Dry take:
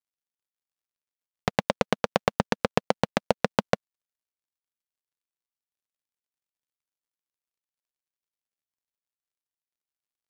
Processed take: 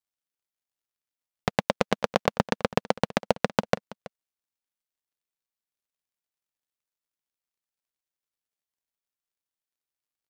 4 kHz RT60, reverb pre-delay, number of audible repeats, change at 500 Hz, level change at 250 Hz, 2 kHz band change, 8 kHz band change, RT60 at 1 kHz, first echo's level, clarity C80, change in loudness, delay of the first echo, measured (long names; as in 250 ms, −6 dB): no reverb audible, no reverb audible, 1, 0.0 dB, 0.0 dB, 0.0 dB, 0.0 dB, no reverb audible, −19.5 dB, no reverb audible, 0.0 dB, 328 ms